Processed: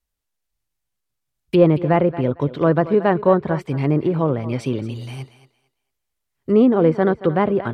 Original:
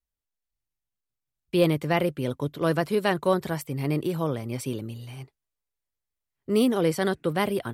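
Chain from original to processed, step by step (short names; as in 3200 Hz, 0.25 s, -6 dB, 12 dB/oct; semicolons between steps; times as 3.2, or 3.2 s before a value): treble ducked by the level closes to 1300 Hz, closed at -22.5 dBFS; thinning echo 0.227 s, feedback 22%, high-pass 310 Hz, level -14 dB; gain +8 dB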